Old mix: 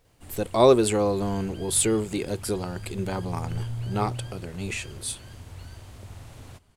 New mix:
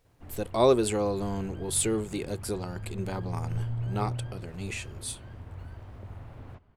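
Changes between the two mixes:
speech -4.5 dB; background: add low-pass 1.7 kHz 12 dB/octave

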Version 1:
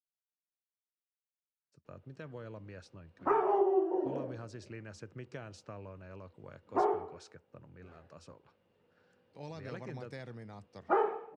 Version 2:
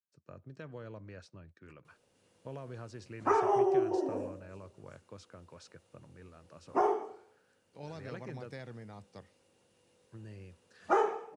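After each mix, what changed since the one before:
speech: entry -1.60 s; background: remove distance through air 360 m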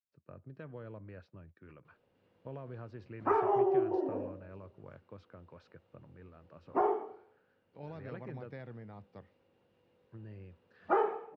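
master: add distance through air 360 m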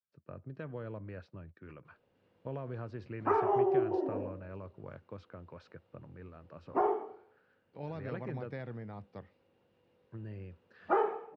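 speech +4.5 dB

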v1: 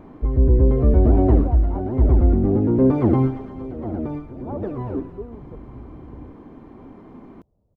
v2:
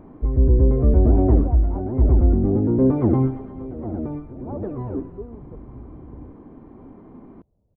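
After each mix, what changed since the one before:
master: add tape spacing loss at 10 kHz 36 dB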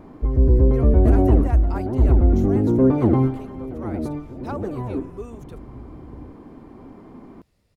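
speech: remove inverse Chebyshev low-pass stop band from 2.3 kHz, stop band 50 dB; master: remove tape spacing loss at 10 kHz 36 dB

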